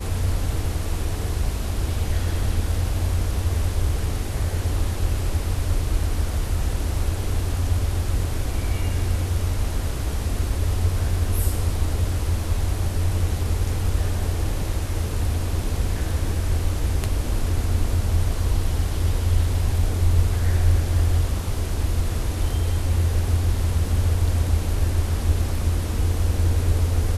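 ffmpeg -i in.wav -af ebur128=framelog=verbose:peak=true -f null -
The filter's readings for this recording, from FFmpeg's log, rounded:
Integrated loudness:
  I:         -24.4 LUFS
  Threshold: -34.4 LUFS
Loudness range:
  LRA:         3.0 LU
  Threshold: -44.4 LUFS
  LRA low:   -25.6 LUFS
  LRA high:  -22.6 LUFS
True peak:
  Peak:       -6.8 dBFS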